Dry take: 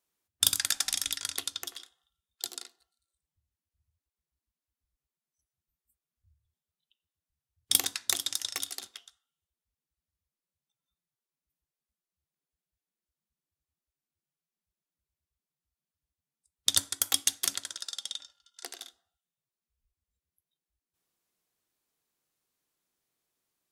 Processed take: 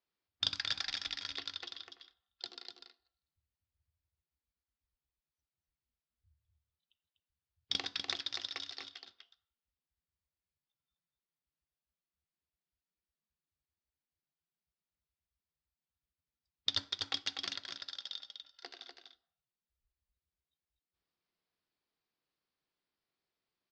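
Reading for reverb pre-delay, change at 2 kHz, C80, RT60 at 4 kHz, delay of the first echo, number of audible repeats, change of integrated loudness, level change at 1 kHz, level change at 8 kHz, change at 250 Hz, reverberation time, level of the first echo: none, -3.5 dB, none, none, 0.246 s, 1, -9.0 dB, -4.0 dB, -23.0 dB, -4.5 dB, none, -6.0 dB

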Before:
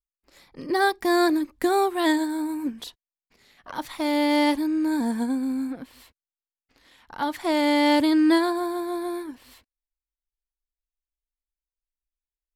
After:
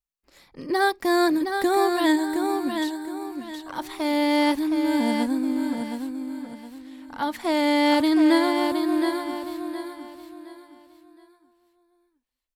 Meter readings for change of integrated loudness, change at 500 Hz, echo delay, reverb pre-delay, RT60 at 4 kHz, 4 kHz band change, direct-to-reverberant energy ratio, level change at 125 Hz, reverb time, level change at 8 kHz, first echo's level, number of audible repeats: 0.0 dB, +1.0 dB, 0.717 s, none, none, +1.0 dB, none, n/a, none, +1.0 dB, -6.0 dB, 3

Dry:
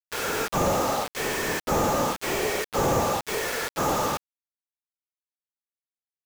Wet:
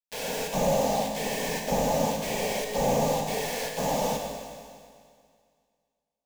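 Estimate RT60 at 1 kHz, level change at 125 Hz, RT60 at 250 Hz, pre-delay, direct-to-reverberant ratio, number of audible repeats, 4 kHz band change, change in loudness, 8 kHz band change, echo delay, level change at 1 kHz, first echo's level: 2.1 s, -1.5 dB, 2.1 s, 19 ms, 2.0 dB, none, -1.5 dB, -2.0 dB, -2.0 dB, none, -3.0 dB, none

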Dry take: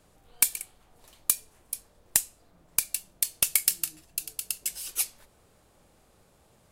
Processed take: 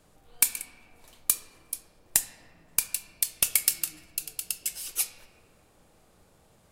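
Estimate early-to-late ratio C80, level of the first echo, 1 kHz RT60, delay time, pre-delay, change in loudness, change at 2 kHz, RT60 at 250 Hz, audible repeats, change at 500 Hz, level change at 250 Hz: 12.5 dB, none, 1.5 s, none, 3 ms, 0.0 dB, +0.5 dB, 3.1 s, none, +0.5 dB, +1.0 dB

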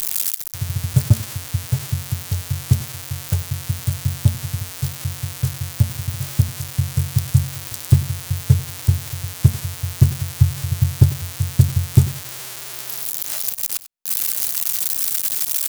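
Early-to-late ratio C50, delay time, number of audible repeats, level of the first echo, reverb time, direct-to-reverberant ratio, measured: none, 94 ms, 1, -16.5 dB, none, none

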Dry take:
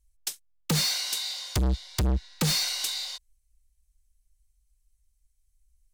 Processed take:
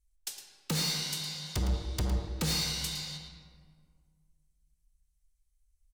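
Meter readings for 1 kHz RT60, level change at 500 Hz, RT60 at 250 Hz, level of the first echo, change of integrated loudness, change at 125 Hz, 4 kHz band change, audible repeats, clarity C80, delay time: 1.8 s, -4.0 dB, 2.3 s, -11.0 dB, -5.0 dB, -4.5 dB, -5.0 dB, 1, 4.5 dB, 0.11 s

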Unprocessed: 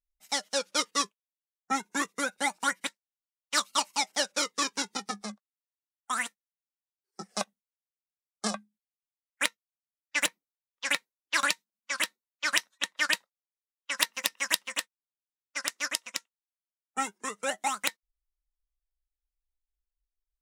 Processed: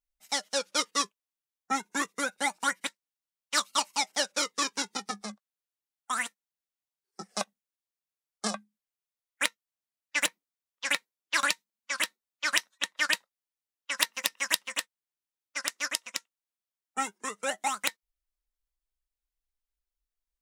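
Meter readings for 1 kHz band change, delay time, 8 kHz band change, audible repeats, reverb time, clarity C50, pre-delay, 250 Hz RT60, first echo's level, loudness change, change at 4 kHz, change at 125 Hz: 0.0 dB, none, 0.0 dB, none, none, none, none, none, none, 0.0 dB, 0.0 dB, n/a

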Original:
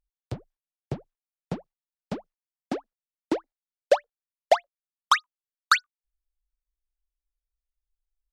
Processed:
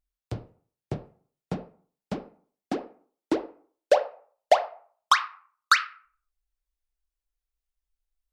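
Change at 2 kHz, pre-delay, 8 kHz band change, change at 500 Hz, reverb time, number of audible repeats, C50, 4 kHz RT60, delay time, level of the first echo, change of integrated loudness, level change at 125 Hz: +1.0 dB, 3 ms, 0.0 dB, +1.0 dB, 0.45 s, none, 13.5 dB, 0.30 s, none, none, +1.0 dB, +0.5 dB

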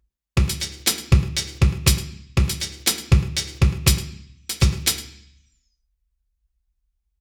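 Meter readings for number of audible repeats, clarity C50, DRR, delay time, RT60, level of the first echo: 1, 11.0 dB, 3.5 dB, 0.107 s, 0.60 s, -17.0 dB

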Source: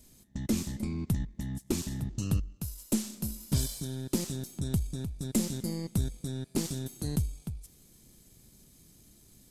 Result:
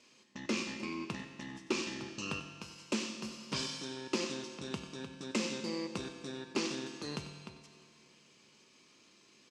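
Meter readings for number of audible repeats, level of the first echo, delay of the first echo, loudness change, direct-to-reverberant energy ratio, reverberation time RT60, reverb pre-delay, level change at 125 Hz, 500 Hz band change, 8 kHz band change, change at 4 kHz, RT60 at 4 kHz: 1, -14.5 dB, 94 ms, -5.0 dB, 5.5 dB, 2.1 s, 6 ms, -16.0 dB, +0.5 dB, -6.5 dB, +3.0 dB, 1.9 s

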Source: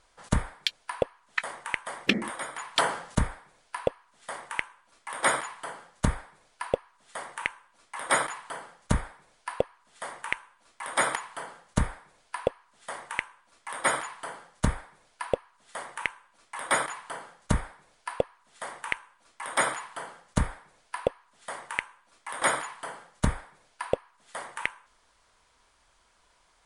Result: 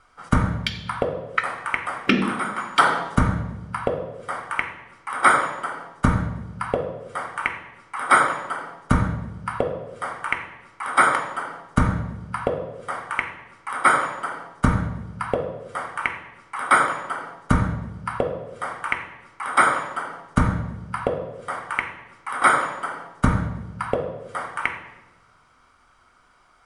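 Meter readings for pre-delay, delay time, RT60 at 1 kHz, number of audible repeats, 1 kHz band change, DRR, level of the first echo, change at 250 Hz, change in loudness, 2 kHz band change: 3 ms, none, 0.95 s, none, +10.5 dB, 6.5 dB, none, +9.5 dB, +8.0 dB, +8.0 dB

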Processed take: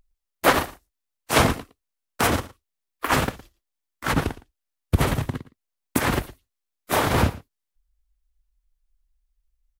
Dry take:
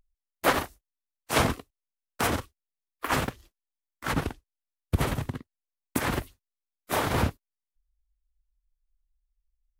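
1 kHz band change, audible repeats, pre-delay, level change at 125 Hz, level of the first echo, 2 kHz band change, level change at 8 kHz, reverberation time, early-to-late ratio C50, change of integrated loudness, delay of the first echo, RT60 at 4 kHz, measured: +5.5 dB, 1, none, +5.5 dB, -19.0 dB, +5.5 dB, +5.5 dB, none, none, +5.5 dB, 0.113 s, none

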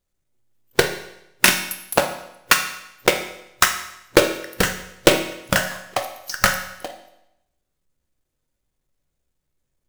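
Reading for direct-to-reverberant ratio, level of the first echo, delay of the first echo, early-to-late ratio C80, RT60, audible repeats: 5.0 dB, none, none, 11.0 dB, 0.85 s, none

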